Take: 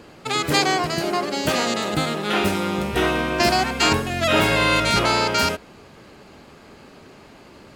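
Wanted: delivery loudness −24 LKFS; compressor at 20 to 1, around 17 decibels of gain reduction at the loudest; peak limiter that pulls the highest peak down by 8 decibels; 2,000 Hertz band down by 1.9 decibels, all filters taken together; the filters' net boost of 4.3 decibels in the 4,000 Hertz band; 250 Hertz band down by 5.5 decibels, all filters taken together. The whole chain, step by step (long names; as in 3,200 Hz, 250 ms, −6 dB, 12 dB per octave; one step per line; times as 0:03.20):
parametric band 250 Hz −8 dB
parametric band 2,000 Hz −4.5 dB
parametric band 4,000 Hz +6.5 dB
downward compressor 20 to 1, threshold −31 dBFS
level +13 dB
brickwall limiter −14 dBFS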